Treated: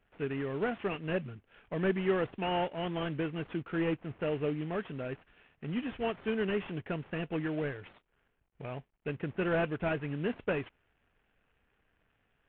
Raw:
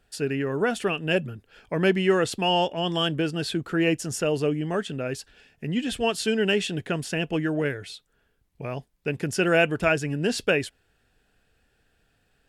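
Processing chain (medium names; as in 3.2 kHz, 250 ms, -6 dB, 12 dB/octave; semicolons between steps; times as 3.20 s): CVSD coder 16 kbps; trim -7.5 dB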